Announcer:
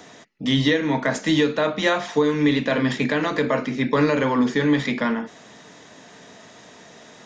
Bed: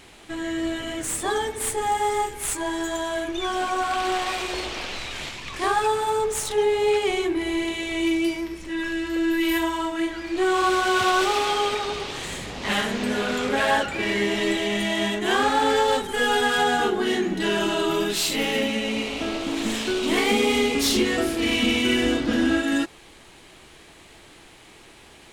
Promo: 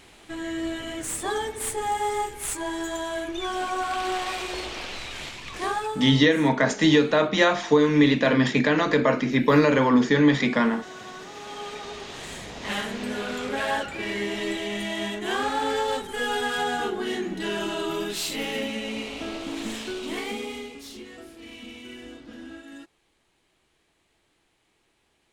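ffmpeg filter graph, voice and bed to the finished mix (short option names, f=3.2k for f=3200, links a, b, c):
-filter_complex "[0:a]adelay=5550,volume=1dB[a];[1:a]volume=13dB,afade=t=out:st=5.54:d=0.67:silence=0.11885,afade=t=in:st=11.31:d=1.05:silence=0.158489,afade=t=out:st=19.57:d=1.25:silence=0.177828[b];[a][b]amix=inputs=2:normalize=0"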